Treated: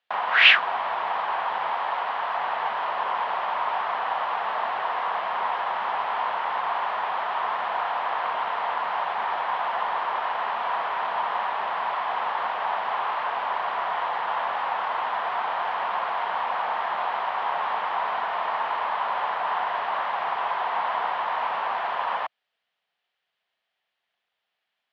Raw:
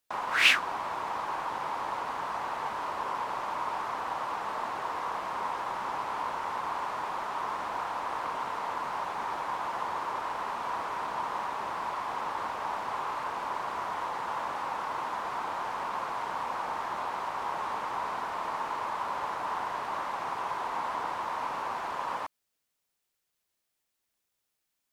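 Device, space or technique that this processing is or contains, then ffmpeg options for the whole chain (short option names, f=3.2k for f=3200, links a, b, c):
overdrive pedal into a guitar cabinet: -filter_complex "[0:a]asplit=2[a][b];[b]highpass=f=720:p=1,volume=8dB,asoftclip=type=tanh:threshold=-7.5dB[c];[a][c]amix=inputs=2:normalize=0,lowpass=f=6.7k:p=1,volume=-6dB,highpass=91,equalizer=f=120:t=q:w=4:g=-6,equalizer=f=310:t=q:w=4:g=-9,equalizer=f=710:t=q:w=4:g=7,equalizer=f=1.8k:t=q:w=4:g=4,equalizer=f=3.1k:t=q:w=4:g=5,lowpass=f=3.8k:w=0.5412,lowpass=f=3.8k:w=1.3066,asettb=1/sr,asplit=3[d][e][f];[d]atrim=end=1.754[g];[e]atrim=start=1.75:end=2.38,asetpts=PTS-STARTPTS,afade=t=in:d=0.004:c=qsin,afade=t=out:st=0.626:d=0.004:c=qsin,lowshelf=f=200:g=-7[h];[f]atrim=start=2.376[i];[g][h]acrossfade=d=0.004:c1=hsin:c2=qsin[j];[j][i]acrossfade=d=0.004:c1=qsin:c2=hsin,volume=2dB"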